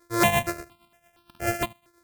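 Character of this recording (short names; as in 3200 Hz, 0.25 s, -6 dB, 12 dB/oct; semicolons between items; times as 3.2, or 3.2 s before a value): a buzz of ramps at a fixed pitch in blocks of 128 samples; tremolo triangle 8.7 Hz, depth 70%; notches that jump at a steady rate 4.3 Hz 780–2000 Hz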